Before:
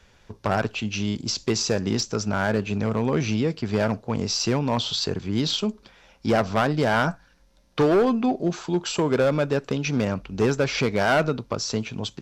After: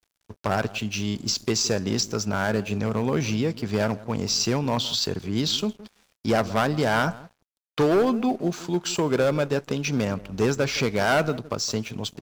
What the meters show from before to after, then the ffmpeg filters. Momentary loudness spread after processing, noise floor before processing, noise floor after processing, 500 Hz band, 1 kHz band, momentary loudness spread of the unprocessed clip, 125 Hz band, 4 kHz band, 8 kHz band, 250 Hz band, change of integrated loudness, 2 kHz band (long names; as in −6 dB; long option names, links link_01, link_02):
6 LU, −58 dBFS, −79 dBFS, −1.0 dB, −1.0 dB, 6 LU, −1.0 dB, +1.0 dB, +2.5 dB, −1.5 dB, −0.5 dB, −0.5 dB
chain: -filter_complex "[0:a]asplit=2[link_01][link_02];[link_02]adelay=166,lowpass=frequency=930:poles=1,volume=-16dB,asplit=2[link_03][link_04];[link_04]adelay=166,lowpass=frequency=930:poles=1,volume=0.17[link_05];[link_01][link_03][link_05]amix=inputs=3:normalize=0,aeval=exprs='sgn(val(0))*max(abs(val(0))-0.00335,0)':channel_layout=same,crystalizer=i=1:c=0,volume=-1dB"